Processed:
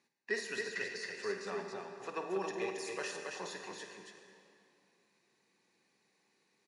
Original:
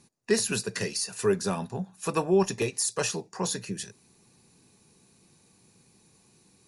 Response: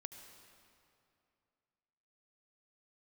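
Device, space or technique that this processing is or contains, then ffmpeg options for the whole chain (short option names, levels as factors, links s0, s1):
station announcement: -filter_complex "[0:a]highpass=360,lowpass=4900,equalizer=f=1900:t=o:w=0.41:g=10,aecho=1:1:52.48|274.1:0.316|0.631[s0];[1:a]atrim=start_sample=2205[s1];[s0][s1]afir=irnorm=-1:irlink=0,asettb=1/sr,asplit=3[s2][s3][s4];[s2]atrim=end=0.634[s5];[s3]atrim=start=0.63:end=2.3,asetpts=PTS-STARTPTS,afade=t=in:d=0.004:c=qsin,afade=t=out:st=1.666:d=0.004:c=qsin,lowpass=8400[s6];[s4]atrim=start=2.296[s7];[s5][s6]acrossfade=d=0.004:c1=hsin:c2=qsin[s8];[s8][s7]acrossfade=d=0.004:c1=qsin:c2=hsin,volume=0.473"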